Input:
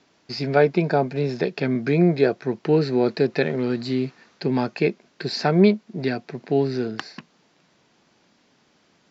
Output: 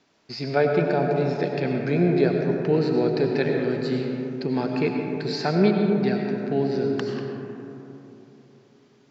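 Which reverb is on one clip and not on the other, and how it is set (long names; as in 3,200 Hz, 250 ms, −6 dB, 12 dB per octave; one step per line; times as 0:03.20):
comb and all-pass reverb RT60 3.4 s, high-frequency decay 0.3×, pre-delay 55 ms, DRR 1.5 dB
level −4 dB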